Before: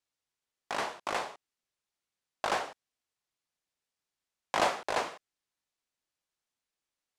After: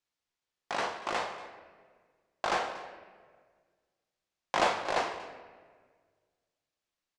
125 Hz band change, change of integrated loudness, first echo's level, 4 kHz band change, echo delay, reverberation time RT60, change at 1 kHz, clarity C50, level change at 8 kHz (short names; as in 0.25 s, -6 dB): +1.5 dB, +1.0 dB, -10.5 dB, +1.0 dB, 41 ms, 1.6 s, +1.5 dB, 8.5 dB, -1.5 dB